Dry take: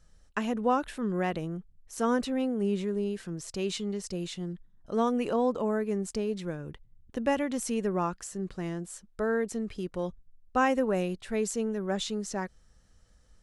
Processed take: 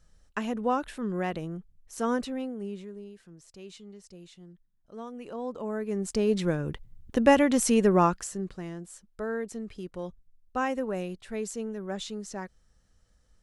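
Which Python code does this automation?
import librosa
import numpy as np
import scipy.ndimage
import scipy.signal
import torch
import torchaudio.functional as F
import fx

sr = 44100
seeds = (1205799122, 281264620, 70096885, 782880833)

y = fx.gain(x, sr, db=fx.line((2.15, -1.0), (3.11, -14.0), (5.1, -14.0), (5.91, -1.0), (6.35, 8.0), (8.05, 8.0), (8.66, -4.0)))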